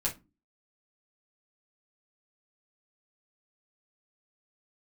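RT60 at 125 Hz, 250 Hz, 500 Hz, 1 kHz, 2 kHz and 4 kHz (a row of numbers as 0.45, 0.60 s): 0.45, 0.50, 0.25, 0.25, 0.20, 0.20 s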